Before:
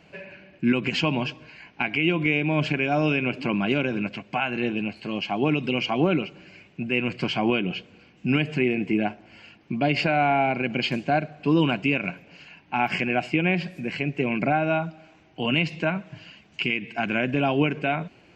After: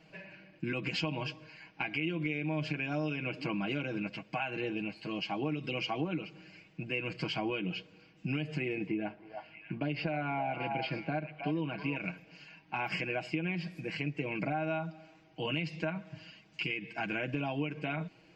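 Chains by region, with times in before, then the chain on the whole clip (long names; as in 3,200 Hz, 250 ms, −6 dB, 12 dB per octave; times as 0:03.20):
0:08.87–0:11.96: high-frequency loss of the air 230 metres + echo through a band-pass that steps 319 ms, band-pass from 870 Hz, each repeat 1.4 octaves, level −4 dB
whole clip: parametric band 4,900 Hz +6 dB 0.24 octaves; comb filter 6.3 ms, depth 72%; downward compressor 5 to 1, threshold −22 dBFS; level −8.5 dB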